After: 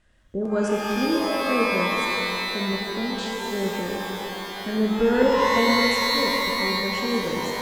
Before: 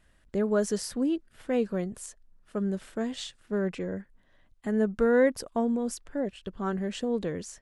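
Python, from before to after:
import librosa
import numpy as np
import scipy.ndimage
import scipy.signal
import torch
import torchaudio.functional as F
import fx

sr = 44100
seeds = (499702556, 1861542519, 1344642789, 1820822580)

y = fx.filter_lfo_lowpass(x, sr, shape='square', hz=2.2, low_hz=560.0, high_hz=7500.0, q=0.86)
y = fx.rev_shimmer(y, sr, seeds[0], rt60_s=3.1, semitones=12, shimmer_db=-2, drr_db=-1.5)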